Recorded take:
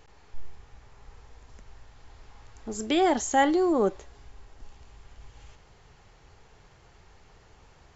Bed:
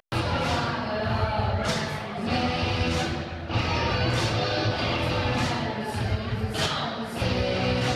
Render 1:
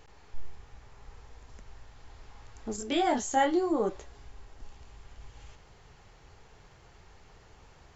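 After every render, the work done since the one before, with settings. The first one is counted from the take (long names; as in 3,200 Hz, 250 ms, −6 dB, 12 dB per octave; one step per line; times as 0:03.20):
0:02.76–0:03.89: micro pitch shift up and down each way 18 cents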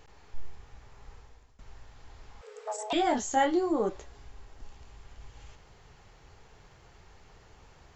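0:01.13–0:01.59: fade out, to −19.5 dB
0:02.41–0:02.93: frequency shifter +420 Hz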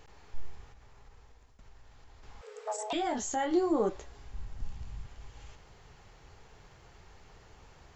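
0:00.71–0:02.23: downward compressor 2 to 1, threshold −54 dBFS
0:02.81–0:03.51: downward compressor 2 to 1, threshold −32 dBFS
0:04.33–0:05.06: low shelf with overshoot 240 Hz +9 dB, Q 1.5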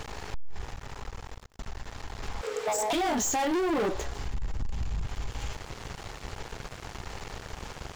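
leveller curve on the samples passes 5
downward compressor 2 to 1, threshold −32 dBFS, peak gain reduction 7 dB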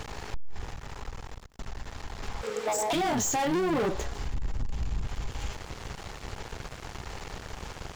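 sub-octave generator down 1 octave, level −6 dB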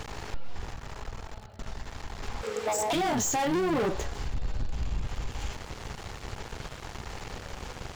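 mix in bed −25.5 dB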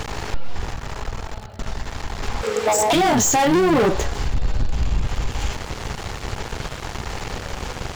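level +10.5 dB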